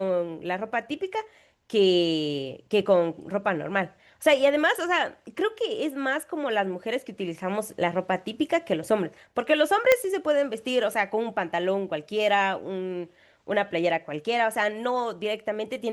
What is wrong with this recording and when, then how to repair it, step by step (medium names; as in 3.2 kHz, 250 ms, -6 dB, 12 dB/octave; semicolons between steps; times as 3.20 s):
9.92 s: pop -5 dBFS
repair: de-click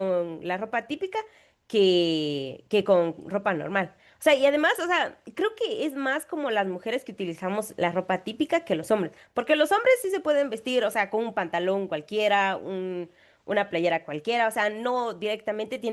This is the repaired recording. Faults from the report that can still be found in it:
nothing left